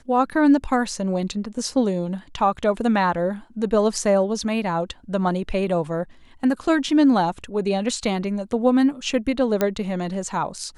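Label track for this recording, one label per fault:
9.610000	9.610000	click −7 dBFS

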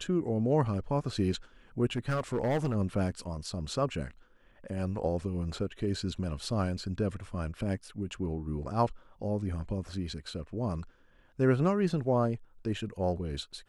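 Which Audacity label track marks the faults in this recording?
1.960000	2.760000	clipping −25 dBFS

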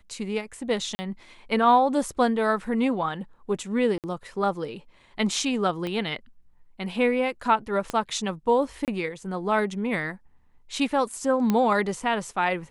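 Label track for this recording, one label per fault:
0.950000	0.990000	drop-out 40 ms
3.980000	4.040000	drop-out 58 ms
5.870000	5.870000	click −19 dBFS
7.900000	7.900000	click −15 dBFS
8.850000	8.880000	drop-out 28 ms
11.500000	11.500000	click −11 dBFS

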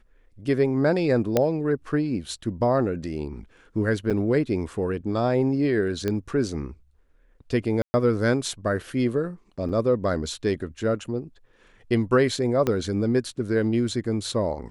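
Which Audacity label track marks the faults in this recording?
1.370000	1.370000	click −7 dBFS
4.100000	4.110000	drop-out 7.2 ms
6.080000	6.080000	click −14 dBFS
7.820000	7.940000	drop-out 120 ms
9.690000	9.690000	drop-out 3.8 ms
12.670000	12.670000	click −11 dBFS

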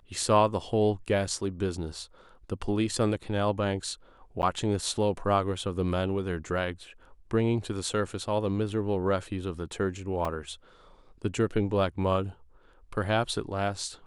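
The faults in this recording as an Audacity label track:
4.420000	4.430000	drop-out 9.6 ms
10.250000	10.250000	drop-out 3 ms

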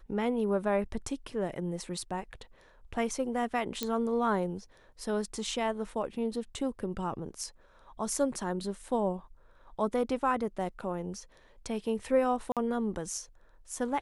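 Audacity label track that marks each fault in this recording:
3.830000	3.830000	click −15 dBFS
12.520000	12.570000	drop-out 47 ms

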